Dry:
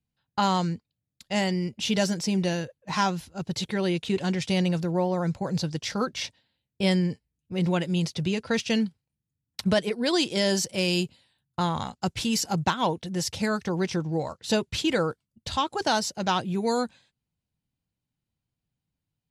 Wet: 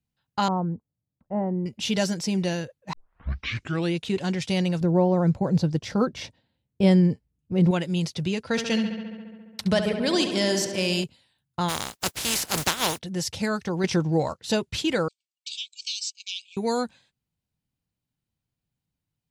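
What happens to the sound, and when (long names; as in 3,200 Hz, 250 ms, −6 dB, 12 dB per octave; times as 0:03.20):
0:00.48–0:01.66: low-pass filter 1,000 Hz 24 dB per octave
0:02.93: tape start 1.01 s
0:04.81–0:07.71: tilt shelving filter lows +6.5 dB, about 1,200 Hz
0:08.45–0:11.04: feedback echo with a low-pass in the loop 69 ms, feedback 79%, low-pass 4,600 Hz, level −8.5 dB
0:11.68–0:12.97: compressing power law on the bin magnitudes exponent 0.31
0:13.84–0:14.34: clip gain +5 dB
0:15.08–0:16.57: linear-phase brick-wall band-pass 2,200–8,600 Hz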